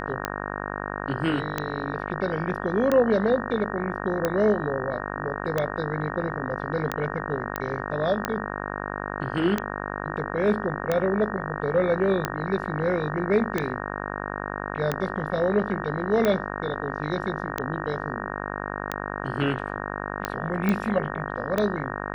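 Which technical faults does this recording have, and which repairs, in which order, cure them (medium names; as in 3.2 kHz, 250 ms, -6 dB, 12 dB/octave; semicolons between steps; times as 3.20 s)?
buzz 50 Hz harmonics 37 -32 dBFS
tick 45 rpm -10 dBFS
7.56 s: pop -12 dBFS
20.69 s: pop -12 dBFS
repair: de-click; de-hum 50 Hz, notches 37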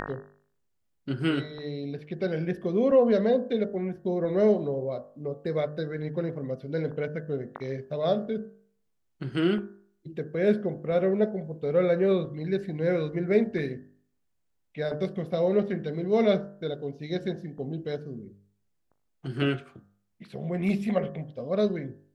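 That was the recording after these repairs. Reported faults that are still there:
nothing left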